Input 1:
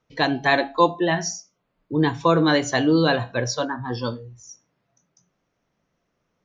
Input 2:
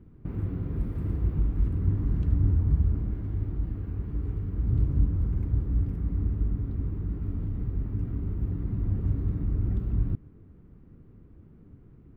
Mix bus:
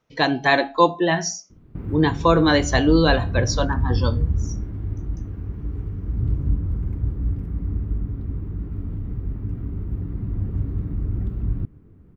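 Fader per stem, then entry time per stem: +1.5, +2.0 decibels; 0.00, 1.50 seconds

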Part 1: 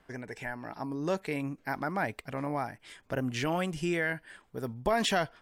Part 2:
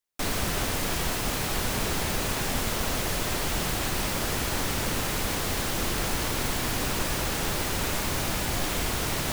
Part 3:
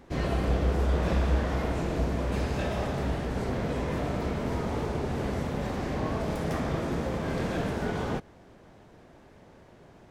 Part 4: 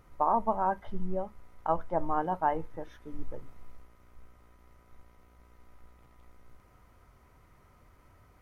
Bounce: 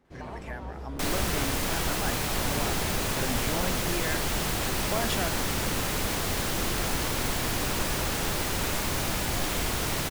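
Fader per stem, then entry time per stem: −4.0, −0.5, −14.0, −18.5 decibels; 0.05, 0.80, 0.00, 0.00 seconds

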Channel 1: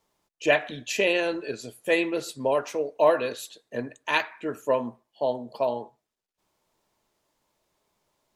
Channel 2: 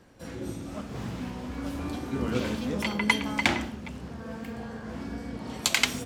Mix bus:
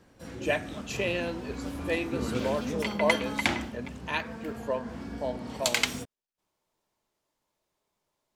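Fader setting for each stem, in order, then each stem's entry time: −7.0, −2.5 decibels; 0.00, 0.00 seconds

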